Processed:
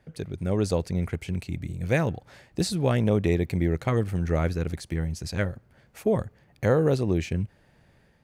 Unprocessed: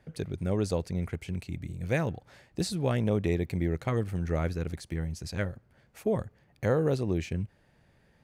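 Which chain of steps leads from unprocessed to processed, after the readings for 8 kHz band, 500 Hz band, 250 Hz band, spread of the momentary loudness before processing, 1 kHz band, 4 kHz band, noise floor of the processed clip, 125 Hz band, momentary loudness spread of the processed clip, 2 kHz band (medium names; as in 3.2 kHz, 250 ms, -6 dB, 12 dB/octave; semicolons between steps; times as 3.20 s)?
+4.5 dB, +4.5 dB, +4.5 dB, 10 LU, +4.5 dB, +4.5 dB, -61 dBFS, +4.5 dB, 10 LU, +4.5 dB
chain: level rider gain up to 4.5 dB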